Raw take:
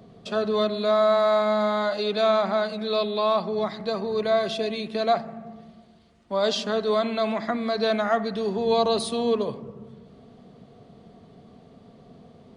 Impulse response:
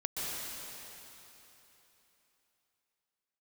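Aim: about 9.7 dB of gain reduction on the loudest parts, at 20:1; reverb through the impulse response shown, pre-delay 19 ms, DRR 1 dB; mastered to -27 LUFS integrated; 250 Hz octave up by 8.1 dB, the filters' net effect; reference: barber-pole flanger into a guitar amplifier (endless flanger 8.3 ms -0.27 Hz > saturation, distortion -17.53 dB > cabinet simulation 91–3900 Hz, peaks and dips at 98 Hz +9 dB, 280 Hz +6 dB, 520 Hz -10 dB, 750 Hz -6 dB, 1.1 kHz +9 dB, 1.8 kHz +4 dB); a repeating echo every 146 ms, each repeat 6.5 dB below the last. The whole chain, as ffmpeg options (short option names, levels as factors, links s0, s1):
-filter_complex "[0:a]equalizer=f=250:t=o:g=8,acompressor=threshold=0.0562:ratio=20,aecho=1:1:146|292|438|584|730|876:0.473|0.222|0.105|0.0491|0.0231|0.0109,asplit=2[s0][s1];[1:a]atrim=start_sample=2205,adelay=19[s2];[s1][s2]afir=irnorm=-1:irlink=0,volume=0.501[s3];[s0][s3]amix=inputs=2:normalize=0,asplit=2[s4][s5];[s5]adelay=8.3,afreqshift=-0.27[s6];[s4][s6]amix=inputs=2:normalize=1,asoftclip=threshold=0.0891,highpass=91,equalizer=f=98:t=q:w=4:g=9,equalizer=f=280:t=q:w=4:g=6,equalizer=f=520:t=q:w=4:g=-10,equalizer=f=750:t=q:w=4:g=-6,equalizer=f=1100:t=q:w=4:g=9,equalizer=f=1800:t=q:w=4:g=4,lowpass=f=3900:w=0.5412,lowpass=f=3900:w=1.3066,volume=1.58"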